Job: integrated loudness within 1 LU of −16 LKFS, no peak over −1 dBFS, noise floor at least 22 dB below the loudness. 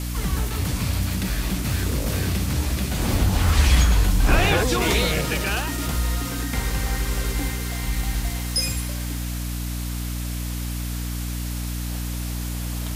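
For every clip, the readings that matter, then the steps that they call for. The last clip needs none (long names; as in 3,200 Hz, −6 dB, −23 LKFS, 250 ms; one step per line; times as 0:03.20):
mains hum 60 Hz; hum harmonics up to 300 Hz; level of the hum −25 dBFS; background noise floor −28 dBFS; target noise floor −46 dBFS; integrated loudness −24.0 LKFS; sample peak −5.0 dBFS; target loudness −16.0 LKFS
→ mains-hum notches 60/120/180/240/300 Hz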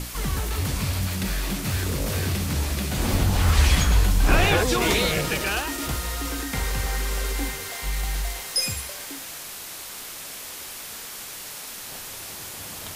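mains hum none found; background noise floor −37 dBFS; target noise floor −48 dBFS
→ noise reduction from a noise print 11 dB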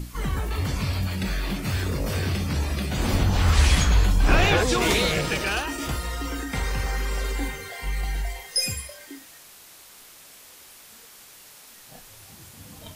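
background noise floor −48 dBFS; integrated loudness −24.5 LKFS; sample peak −6.5 dBFS; target loudness −16.0 LKFS
→ level +8.5 dB
brickwall limiter −1 dBFS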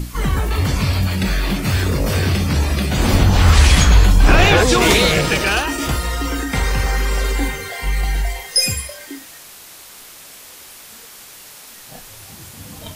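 integrated loudness −16.5 LKFS; sample peak −1.0 dBFS; background noise floor −40 dBFS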